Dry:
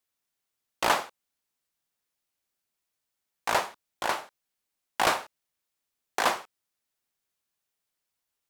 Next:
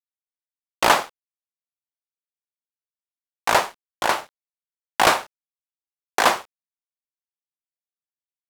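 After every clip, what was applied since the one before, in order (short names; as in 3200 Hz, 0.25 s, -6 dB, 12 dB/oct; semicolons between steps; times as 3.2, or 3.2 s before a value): crossover distortion -51.5 dBFS; gain +8 dB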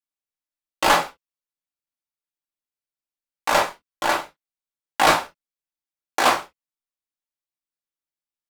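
reverb, pre-delay 4 ms, DRR -1 dB; gain -3.5 dB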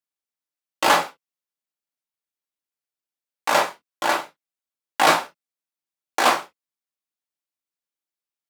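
HPF 150 Hz 12 dB/oct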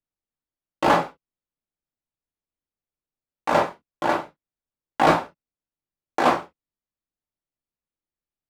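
tilt -4 dB/oct; gain -1.5 dB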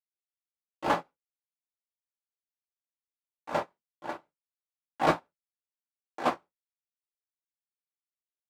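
upward expander 2.5:1, over -31 dBFS; gain -5.5 dB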